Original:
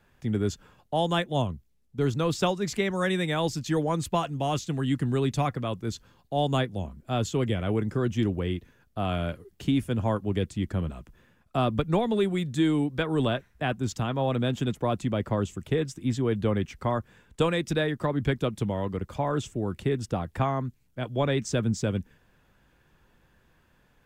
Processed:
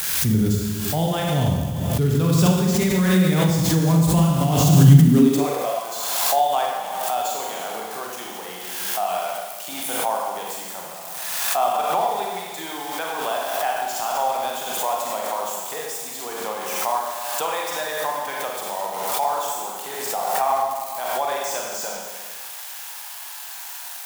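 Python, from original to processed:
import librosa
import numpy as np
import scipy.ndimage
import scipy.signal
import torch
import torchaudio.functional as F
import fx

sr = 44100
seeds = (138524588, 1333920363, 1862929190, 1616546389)

y = x + 0.5 * 10.0 ** (-24.0 / 20.0) * np.diff(np.sign(x), prepend=np.sign(x[:1]))
y = fx.peak_eq(y, sr, hz=170.0, db=7.0, octaves=0.55)
y = fx.rev_schroeder(y, sr, rt60_s=1.5, comb_ms=33, drr_db=-2.5)
y = fx.filter_sweep_highpass(y, sr, from_hz=65.0, to_hz=790.0, start_s=4.55, end_s=5.85, q=4.3)
y = fx.dynamic_eq(y, sr, hz=110.0, q=0.73, threshold_db=-31.0, ratio=4.0, max_db=5)
y = fx.pre_swell(y, sr, db_per_s=30.0)
y = y * librosa.db_to_amplitude(-3.5)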